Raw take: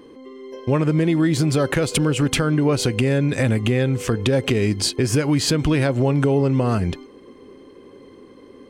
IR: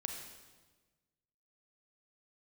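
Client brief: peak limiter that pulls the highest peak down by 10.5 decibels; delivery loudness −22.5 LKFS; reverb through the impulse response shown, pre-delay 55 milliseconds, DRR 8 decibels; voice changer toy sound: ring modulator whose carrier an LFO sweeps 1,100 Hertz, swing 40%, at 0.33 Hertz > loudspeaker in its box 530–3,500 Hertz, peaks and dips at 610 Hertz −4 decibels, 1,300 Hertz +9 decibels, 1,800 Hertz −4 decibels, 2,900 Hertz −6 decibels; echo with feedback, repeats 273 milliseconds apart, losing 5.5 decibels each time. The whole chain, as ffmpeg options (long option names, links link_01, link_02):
-filter_complex "[0:a]alimiter=limit=-17dB:level=0:latency=1,aecho=1:1:273|546|819|1092|1365|1638|1911:0.531|0.281|0.149|0.079|0.0419|0.0222|0.0118,asplit=2[link_01][link_02];[1:a]atrim=start_sample=2205,adelay=55[link_03];[link_02][link_03]afir=irnorm=-1:irlink=0,volume=-7.5dB[link_04];[link_01][link_04]amix=inputs=2:normalize=0,aeval=exprs='val(0)*sin(2*PI*1100*n/s+1100*0.4/0.33*sin(2*PI*0.33*n/s))':channel_layout=same,highpass=530,equalizer=frequency=610:width_type=q:width=4:gain=-4,equalizer=frequency=1300:width_type=q:width=4:gain=9,equalizer=frequency=1800:width_type=q:width=4:gain=-4,equalizer=frequency=2900:width_type=q:width=4:gain=-6,lowpass=frequency=3500:width=0.5412,lowpass=frequency=3500:width=1.3066"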